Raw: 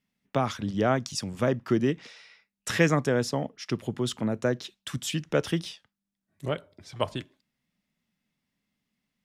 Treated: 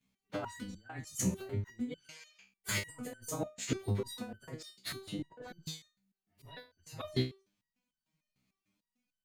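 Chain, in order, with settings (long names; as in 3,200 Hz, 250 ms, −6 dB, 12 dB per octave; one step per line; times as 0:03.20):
partials spread apart or drawn together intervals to 108%
0:04.92–0:05.66: drawn EQ curve 100 Hz 0 dB, 700 Hz +6 dB, 10,000 Hz −23 dB
compressor whose output falls as the input rises −31 dBFS, ratio −0.5
step-sequenced resonator 6.7 Hz 64–1,500 Hz
level +8 dB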